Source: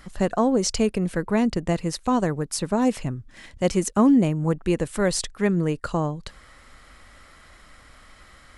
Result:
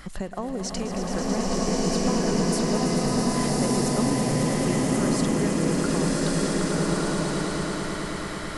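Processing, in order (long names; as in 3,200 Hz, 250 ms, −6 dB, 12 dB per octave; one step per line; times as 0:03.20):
downward compressor 6 to 1, threshold −34 dBFS, peak gain reduction 19 dB
echo that builds up and dies away 110 ms, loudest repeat 5, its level −9 dB
slow-attack reverb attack 1,250 ms, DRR −5.5 dB
level +4.5 dB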